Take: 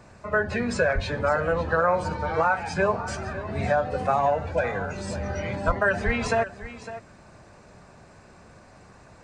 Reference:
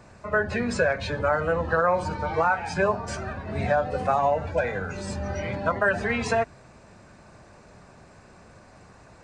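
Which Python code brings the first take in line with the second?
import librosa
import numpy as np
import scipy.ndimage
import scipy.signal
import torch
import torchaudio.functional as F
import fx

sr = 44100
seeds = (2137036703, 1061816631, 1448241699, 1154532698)

y = fx.highpass(x, sr, hz=140.0, slope=24, at=(0.94, 1.06), fade=0.02)
y = fx.highpass(y, sr, hz=140.0, slope=24, at=(5.66, 5.78), fade=0.02)
y = fx.highpass(y, sr, hz=140.0, slope=24, at=(6.05, 6.17), fade=0.02)
y = fx.fix_echo_inverse(y, sr, delay_ms=556, level_db=-14.0)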